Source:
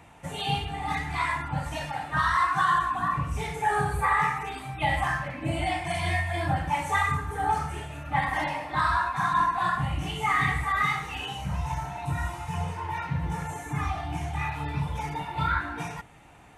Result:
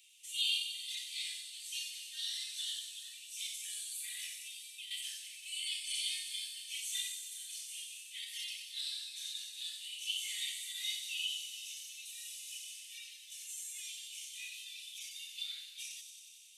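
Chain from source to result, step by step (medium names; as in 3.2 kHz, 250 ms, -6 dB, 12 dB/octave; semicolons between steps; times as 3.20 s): steep high-pass 2.9 kHz 48 dB/octave; 4.40–4.91 s: compression, threshold -50 dBFS, peak gain reduction 12 dB; feedback echo behind a high-pass 92 ms, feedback 80%, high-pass 4.8 kHz, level -5.5 dB; trim +3 dB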